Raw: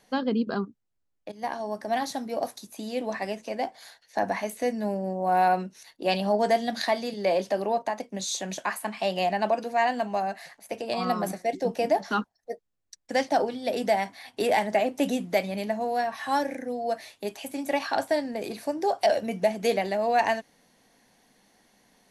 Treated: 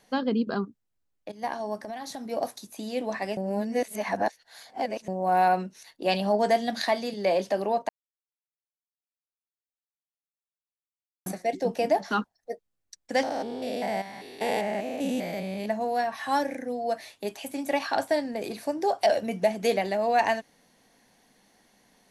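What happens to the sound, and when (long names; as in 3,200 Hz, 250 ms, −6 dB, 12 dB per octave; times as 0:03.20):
0:01.75–0:02.31: downward compressor, threshold −33 dBFS
0:03.37–0:05.08: reverse
0:07.89–0:11.26: silence
0:13.23–0:15.66: spectrum averaged block by block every 200 ms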